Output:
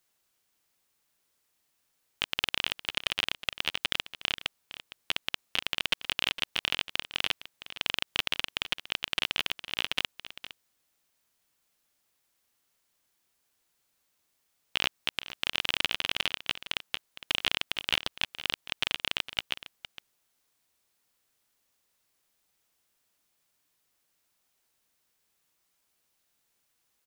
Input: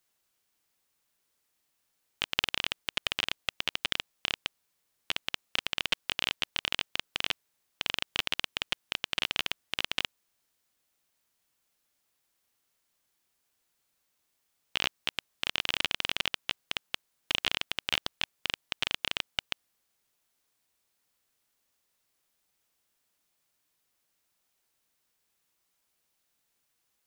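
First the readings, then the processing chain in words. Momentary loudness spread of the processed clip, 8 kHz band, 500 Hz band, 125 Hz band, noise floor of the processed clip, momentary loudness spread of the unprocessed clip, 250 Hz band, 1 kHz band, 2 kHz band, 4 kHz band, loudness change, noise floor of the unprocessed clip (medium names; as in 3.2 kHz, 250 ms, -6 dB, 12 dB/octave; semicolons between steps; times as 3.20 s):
10 LU, 0.0 dB, +0.5 dB, +0.5 dB, -78 dBFS, 6 LU, +0.5 dB, +0.5 dB, +1.5 dB, +1.5 dB, +1.5 dB, -78 dBFS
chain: waveshaping leveller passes 1; peak limiter -12.5 dBFS, peak gain reduction 9 dB; on a send: delay 460 ms -14 dB; on the sum: trim +3.5 dB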